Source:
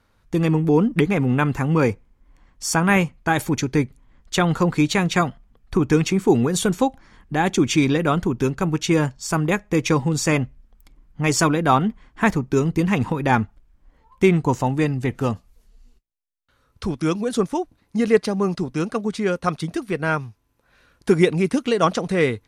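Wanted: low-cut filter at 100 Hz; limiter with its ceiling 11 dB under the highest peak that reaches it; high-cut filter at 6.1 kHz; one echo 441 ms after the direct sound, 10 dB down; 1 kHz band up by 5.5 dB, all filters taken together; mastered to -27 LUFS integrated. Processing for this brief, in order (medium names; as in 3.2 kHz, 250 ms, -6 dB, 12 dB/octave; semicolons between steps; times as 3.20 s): high-pass 100 Hz; low-pass 6.1 kHz; peaking EQ 1 kHz +7 dB; peak limiter -10.5 dBFS; delay 441 ms -10 dB; trim -4.5 dB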